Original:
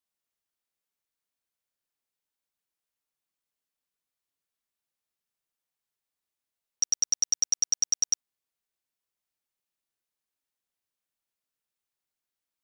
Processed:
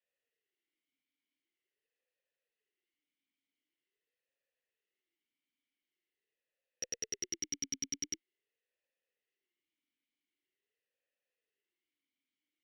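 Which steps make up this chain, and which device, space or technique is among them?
talk box (tube stage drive 22 dB, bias 0.35; vowel sweep e-i 0.45 Hz); gain +15 dB

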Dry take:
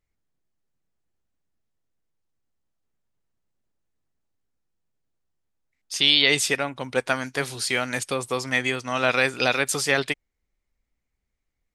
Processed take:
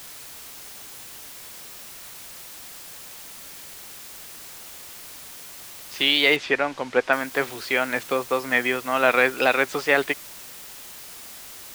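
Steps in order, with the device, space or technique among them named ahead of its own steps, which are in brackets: wax cylinder (BPF 270–2400 Hz; wow and flutter; white noise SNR 14 dB); 6.36–7.13 LPF 5100 Hz 12 dB/oct; gain +4 dB

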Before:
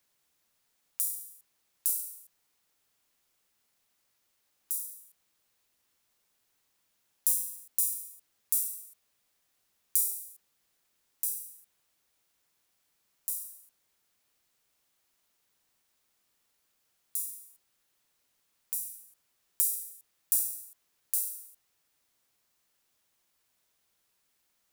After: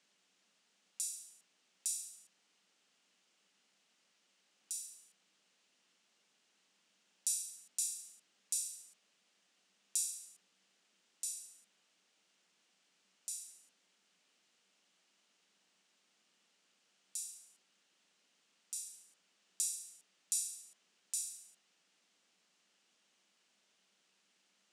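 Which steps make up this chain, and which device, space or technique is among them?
television speaker (speaker cabinet 190–7700 Hz, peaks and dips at 190 Hz +9 dB, 1000 Hz -3 dB, 2900 Hz +5 dB); gain +3 dB

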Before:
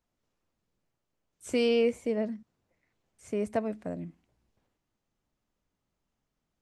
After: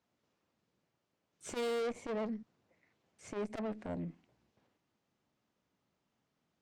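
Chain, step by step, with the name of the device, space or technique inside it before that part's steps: valve radio (BPF 120–5900 Hz; tube stage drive 36 dB, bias 0.2; core saturation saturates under 190 Hz); gain +3.5 dB

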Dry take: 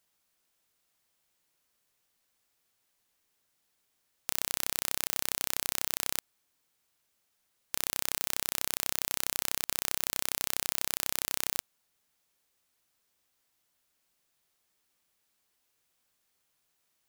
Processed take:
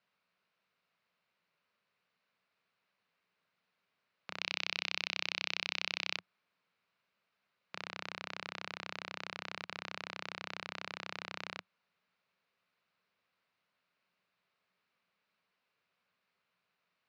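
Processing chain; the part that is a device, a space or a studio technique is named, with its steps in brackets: 4.41–6.17 band shelf 3800 Hz +9 dB; overdrive pedal into a guitar cabinet (overdrive pedal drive 10 dB, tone 4000 Hz, clips at 0 dBFS; speaker cabinet 100–3800 Hz, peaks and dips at 100 Hz +4 dB, 180 Hz +10 dB, 320 Hz -7 dB, 810 Hz -6 dB, 1800 Hz -4 dB, 3300 Hz -8 dB); gain -1 dB

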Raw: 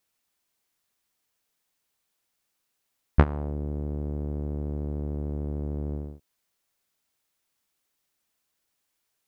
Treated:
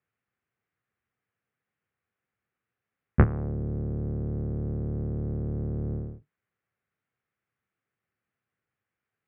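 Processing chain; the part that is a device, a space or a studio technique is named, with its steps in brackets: sub-octave bass pedal (octaver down 1 oct, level 0 dB; speaker cabinet 83–2100 Hz, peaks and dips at 110 Hz +5 dB, 290 Hz -5 dB, 630 Hz -6 dB, 940 Hz -9 dB); gain +1 dB

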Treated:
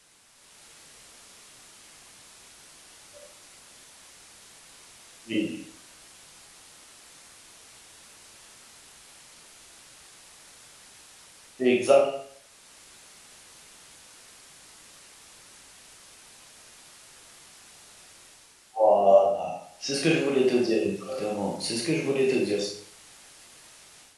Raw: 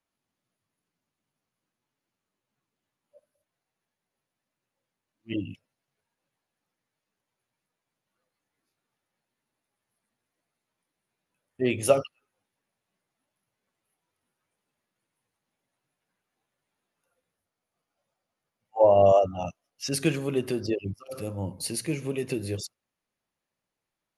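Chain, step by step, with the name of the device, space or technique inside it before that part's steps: filmed off a television (BPF 220–6700 Hz; bell 730 Hz +5 dB 0.3 oct; reverb RT60 0.60 s, pre-delay 18 ms, DRR -2 dB; white noise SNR 23 dB; AGC gain up to 8.5 dB; gain -5.5 dB; AAC 64 kbps 24000 Hz)

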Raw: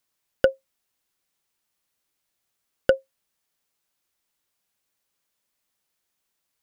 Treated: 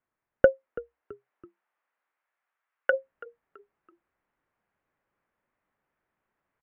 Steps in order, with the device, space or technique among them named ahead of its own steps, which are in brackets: 0.45–2.92 HPF 310 Hz -> 1200 Hz 12 dB/oct; frequency-shifting echo 0.331 s, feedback 36%, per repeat -64 Hz, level -20.5 dB; action camera in a waterproof case (LPF 1900 Hz 24 dB/oct; AGC gain up to 6 dB; AAC 128 kbps 48000 Hz)

